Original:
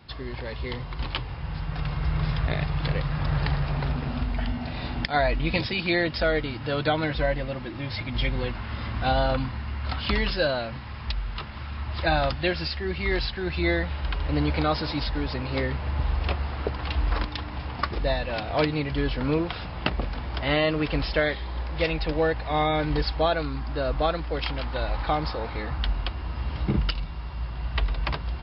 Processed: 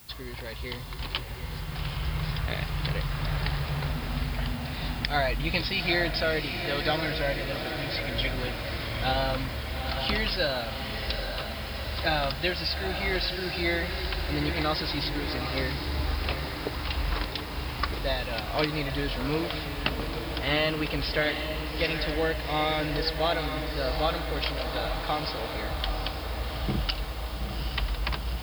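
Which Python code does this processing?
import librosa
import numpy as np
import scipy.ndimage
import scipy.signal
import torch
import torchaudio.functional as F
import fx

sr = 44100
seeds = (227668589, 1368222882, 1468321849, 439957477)

y = fx.high_shelf(x, sr, hz=2300.0, db=8.5)
y = fx.dmg_noise_colour(y, sr, seeds[0], colour='blue', level_db=-48.0)
y = fx.echo_diffused(y, sr, ms=819, feedback_pct=68, wet_db=-7.0)
y = y * 10.0 ** (-5.0 / 20.0)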